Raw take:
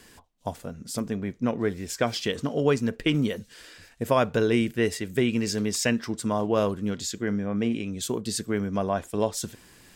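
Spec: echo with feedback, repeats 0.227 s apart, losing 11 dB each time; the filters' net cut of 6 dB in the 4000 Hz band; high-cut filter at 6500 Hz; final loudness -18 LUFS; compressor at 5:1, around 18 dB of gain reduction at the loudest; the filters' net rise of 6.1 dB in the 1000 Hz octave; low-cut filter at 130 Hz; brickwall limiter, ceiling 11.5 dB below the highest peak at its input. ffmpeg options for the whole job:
-af "highpass=130,lowpass=6.5k,equalizer=f=1k:t=o:g=8,equalizer=f=4k:t=o:g=-8.5,acompressor=threshold=-34dB:ratio=5,alimiter=level_in=5dB:limit=-24dB:level=0:latency=1,volume=-5dB,aecho=1:1:227|454|681:0.282|0.0789|0.0221,volume=22.5dB"

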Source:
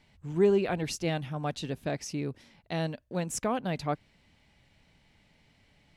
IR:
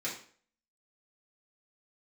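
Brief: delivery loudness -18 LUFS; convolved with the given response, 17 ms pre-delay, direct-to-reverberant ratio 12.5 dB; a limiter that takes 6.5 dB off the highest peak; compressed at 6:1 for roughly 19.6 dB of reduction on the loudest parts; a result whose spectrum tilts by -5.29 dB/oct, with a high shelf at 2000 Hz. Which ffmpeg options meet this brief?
-filter_complex "[0:a]highshelf=f=2k:g=-4,acompressor=threshold=-41dB:ratio=6,alimiter=level_in=11.5dB:limit=-24dB:level=0:latency=1,volume=-11.5dB,asplit=2[a][b];[1:a]atrim=start_sample=2205,adelay=17[c];[b][c]afir=irnorm=-1:irlink=0,volume=-16.5dB[d];[a][d]amix=inputs=2:normalize=0,volume=28.5dB"

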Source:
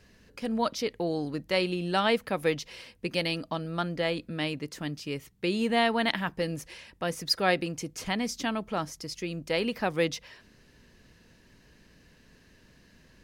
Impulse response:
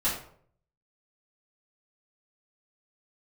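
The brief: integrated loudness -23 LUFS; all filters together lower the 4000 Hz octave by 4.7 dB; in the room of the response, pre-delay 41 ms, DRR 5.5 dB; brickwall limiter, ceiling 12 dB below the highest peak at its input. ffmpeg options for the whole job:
-filter_complex "[0:a]equalizer=f=4k:t=o:g=-6.5,alimiter=limit=-24dB:level=0:latency=1,asplit=2[a][b];[1:a]atrim=start_sample=2205,adelay=41[c];[b][c]afir=irnorm=-1:irlink=0,volume=-15dB[d];[a][d]amix=inputs=2:normalize=0,volume=11dB"

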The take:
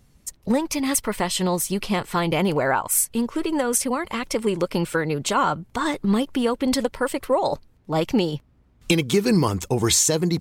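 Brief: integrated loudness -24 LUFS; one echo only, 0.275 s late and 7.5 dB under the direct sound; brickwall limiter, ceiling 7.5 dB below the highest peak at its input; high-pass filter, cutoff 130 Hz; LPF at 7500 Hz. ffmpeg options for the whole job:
-af "highpass=130,lowpass=7.5k,alimiter=limit=-14dB:level=0:latency=1,aecho=1:1:275:0.422"

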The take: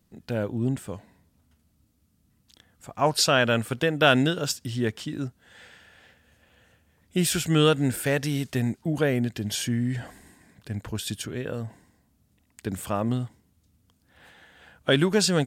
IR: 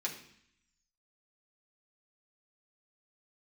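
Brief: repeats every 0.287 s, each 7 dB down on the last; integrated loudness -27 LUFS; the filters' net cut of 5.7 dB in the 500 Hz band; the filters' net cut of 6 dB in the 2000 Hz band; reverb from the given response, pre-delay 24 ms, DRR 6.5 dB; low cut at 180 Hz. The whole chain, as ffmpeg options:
-filter_complex "[0:a]highpass=180,equalizer=f=500:t=o:g=-6.5,equalizer=f=2k:t=o:g=-8.5,aecho=1:1:287|574|861|1148|1435:0.447|0.201|0.0905|0.0407|0.0183,asplit=2[a][b];[1:a]atrim=start_sample=2205,adelay=24[c];[b][c]afir=irnorm=-1:irlink=0,volume=-9dB[d];[a][d]amix=inputs=2:normalize=0,volume=1dB"

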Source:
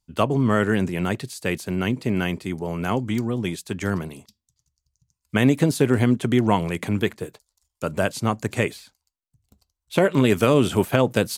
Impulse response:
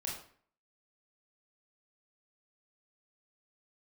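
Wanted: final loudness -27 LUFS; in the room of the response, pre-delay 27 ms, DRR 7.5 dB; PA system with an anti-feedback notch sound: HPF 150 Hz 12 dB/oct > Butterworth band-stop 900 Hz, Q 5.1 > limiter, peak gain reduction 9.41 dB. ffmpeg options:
-filter_complex "[0:a]asplit=2[a][b];[1:a]atrim=start_sample=2205,adelay=27[c];[b][c]afir=irnorm=-1:irlink=0,volume=-8dB[d];[a][d]amix=inputs=2:normalize=0,highpass=150,asuperstop=centerf=900:order=8:qfactor=5.1,volume=-1.5dB,alimiter=limit=-15dB:level=0:latency=1"

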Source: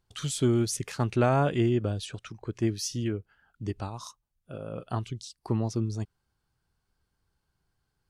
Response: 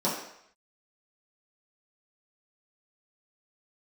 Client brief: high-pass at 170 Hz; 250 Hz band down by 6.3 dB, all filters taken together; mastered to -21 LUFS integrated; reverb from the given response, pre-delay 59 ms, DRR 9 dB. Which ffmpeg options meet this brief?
-filter_complex "[0:a]highpass=170,equalizer=f=250:t=o:g=-8,asplit=2[a][b];[1:a]atrim=start_sample=2205,adelay=59[c];[b][c]afir=irnorm=-1:irlink=0,volume=-20dB[d];[a][d]amix=inputs=2:normalize=0,volume=12dB"

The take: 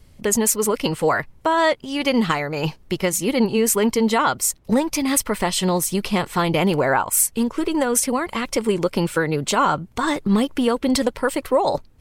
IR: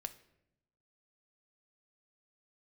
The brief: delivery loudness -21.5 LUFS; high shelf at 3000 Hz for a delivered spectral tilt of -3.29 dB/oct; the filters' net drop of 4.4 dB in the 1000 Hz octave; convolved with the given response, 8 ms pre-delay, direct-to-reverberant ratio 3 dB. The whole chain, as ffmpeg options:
-filter_complex "[0:a]equalizer=f=1k:t=o:g=-6,highshelf=f=3k:g=4.5,asplit=2[a][b];[1:a]atrim=start_sample=2205,adelay=8[c];[b][c]afir=irnorm=-1:irlink=0,volume=0dB[d];[a][d]amix=inputs=2:normalize=0,volume=-3.5dB"

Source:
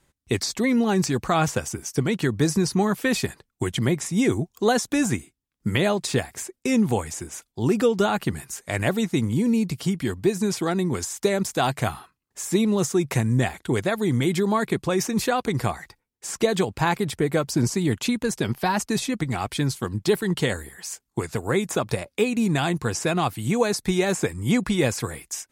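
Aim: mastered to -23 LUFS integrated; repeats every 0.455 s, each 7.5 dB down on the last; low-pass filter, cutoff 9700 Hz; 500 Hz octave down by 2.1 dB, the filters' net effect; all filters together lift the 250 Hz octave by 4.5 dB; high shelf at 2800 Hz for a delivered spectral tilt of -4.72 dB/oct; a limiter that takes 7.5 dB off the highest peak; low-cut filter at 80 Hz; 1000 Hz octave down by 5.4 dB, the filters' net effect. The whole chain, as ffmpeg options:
-af "highpass=80,lowpass=9.7k,equalizer=f=250:t=o:g=7,equalizer=f=500:t=o:g=-4.5,equalizer=f=1k:t=o:g=-7,highshelf=f=2.8k:g=5.5,alimiter=limit=-13dB:level=0:latency=1,aecho=1:1:455|910|1365|1820|2275:0.422|0.177|0.0744|0.0312|0.0131"

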